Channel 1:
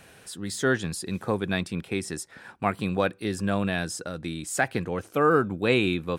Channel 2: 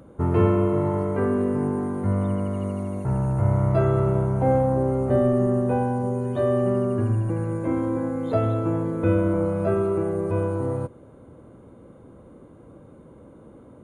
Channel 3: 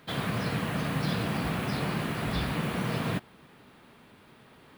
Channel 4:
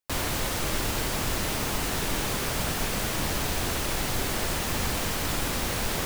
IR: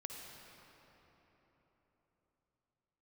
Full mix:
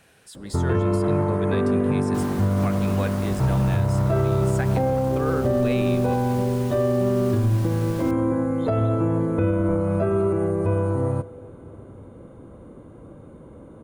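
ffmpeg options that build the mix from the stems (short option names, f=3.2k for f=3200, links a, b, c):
-filter_complex "[0:a]volume=-6.5dB,asplit=2[a][b];[b]volume=-9dB[c];[1:a]lowshelf=f=68:g=6,adelay=350,volume=2dB,asplit=2[d][e];[e]volume=-14dB[f];[2:a]lowpass=f=1.7k:w=0.5412,lowpass=f=1.7k:w=1.3066,acompressor=threshold=-34dB:ratio=6,adelay=950,volume=3dB[g];[3:a]adelay=2050,volume=-13.5dB,asplit=2[h][i];[i]volume=-16dB[j];[4:a]atrim=start_sample=2205[k];[c][f][j]amix=inputs=3:normalize=0[l];[l][k]afir=irnorm=-1:irlink=0[m];[a][d][g][h][m]amix=inputs=5:normalize=0,alimiter=limit=-13dB:level=0:latency=1:release=78"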